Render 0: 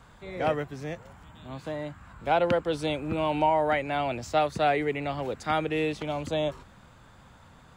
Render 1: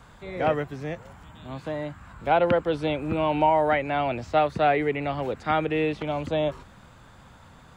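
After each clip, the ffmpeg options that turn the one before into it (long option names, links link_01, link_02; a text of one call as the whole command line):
ffmpeg -i in.wav -filter_complex "[0:a]acrossover=split=3600[link_01][link_02];[link_02]acompressor=threshold=-59dB:ratio=4:attack=1:release=60[link_03];[link_01][link_03]amix=inputs=2:normalize=0,volume=3dB" out.wav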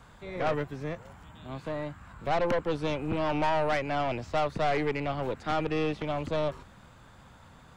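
ffmpeg -i in.wav -af "aeval=exprs='(tanh(14.1*val(0)+0.6)-tanh(0.6))/14.1':channel_layout=same" out.wav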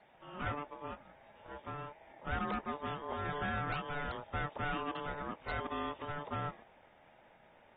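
ffmpeg -i in.wav -af "acrusher=bits=9:mix=0:aa=0.000001,aeval=exprs='val(0)*sin(2*PI*730*n/s)':channel_layout=same,volume=-7.5dB" -ar 32000 -c:a aac -b:a 16k out.aac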